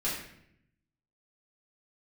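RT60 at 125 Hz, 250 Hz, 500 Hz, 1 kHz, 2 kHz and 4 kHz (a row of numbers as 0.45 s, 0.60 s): 1.2 s, 1.1 s, 0.80 s, 0.65 s, 0.75 s, 0.55 s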